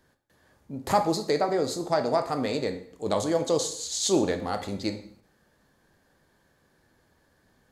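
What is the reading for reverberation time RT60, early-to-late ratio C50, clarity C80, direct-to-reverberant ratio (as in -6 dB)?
0.60 s, 11.0 dB, 14.5 dB, 6.5 dB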